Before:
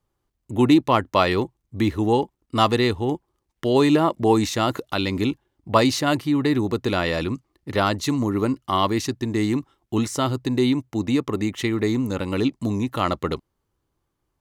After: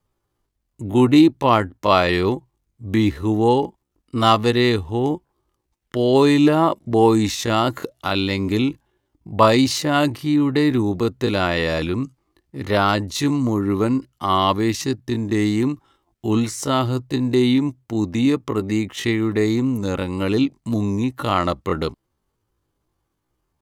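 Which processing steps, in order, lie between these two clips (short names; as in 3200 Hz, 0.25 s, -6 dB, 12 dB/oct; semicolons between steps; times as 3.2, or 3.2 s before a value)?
wow and flutter 25 cents; tempo 0.61×; gain +2.5 dB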